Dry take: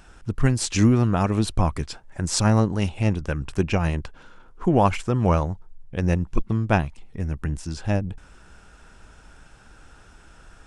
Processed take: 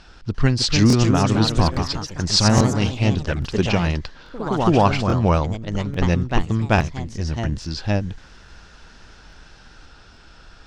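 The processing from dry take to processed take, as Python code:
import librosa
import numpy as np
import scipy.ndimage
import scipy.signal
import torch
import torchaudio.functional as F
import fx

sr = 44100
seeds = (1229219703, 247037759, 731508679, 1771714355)

y = fx.lowpass_res(x, sr, hz=4600.0, q=3.4)
y = fx.echo_pitch(y, sr, ms=346, semitones=2, count=3, db_per_echo=-6.0)
y = fx.buffer_crackle(y, sr, first_s=0.88, period_s=0.84, block=1024, kind='repeat')
y = y * 10.0 ** (2.0 / 20.0)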